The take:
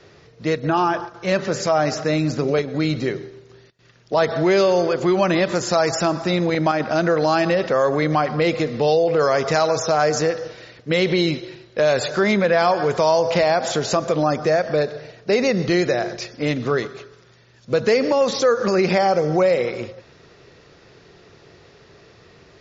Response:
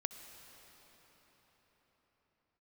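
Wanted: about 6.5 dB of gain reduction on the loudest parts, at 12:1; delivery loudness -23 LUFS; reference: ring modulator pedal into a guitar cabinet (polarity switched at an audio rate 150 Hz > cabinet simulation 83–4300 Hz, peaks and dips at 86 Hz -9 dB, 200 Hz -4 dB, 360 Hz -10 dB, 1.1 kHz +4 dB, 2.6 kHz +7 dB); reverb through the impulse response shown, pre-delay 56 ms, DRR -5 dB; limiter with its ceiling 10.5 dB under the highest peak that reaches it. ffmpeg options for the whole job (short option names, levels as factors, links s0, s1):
-filter_complex "[0:a]acompressor=threshold=0.112:ratio=12,alimiter=limit=0.126:level=0:latency=1,asplit=2[s0][s1];[1:a]atrim=start_sample=2205,adelay=56[s2];[s1][s2]afir=irnorm=-1:irlink=0,volume=1.88[s3];[s0][s3]amix=inputs=2:normalize=0,aeval=exprs='val(0)*sgn(sin(2*PI*150*n/s))':c=same,highpass=83,equalizer=f=86:t=q:w=4:g=-9,equalizer=f=200:t=q:w=4:g=-4,equalizer=f=360:t=q:w=4:g=-10,equalizer=f=1100:t=q:w=4:g=4,equalizer=f=2600:t=q:w=4:g=7,lowpass=f=4300:w=0.5412,lowpass=f=4300:w=1.3066,volume=0.891"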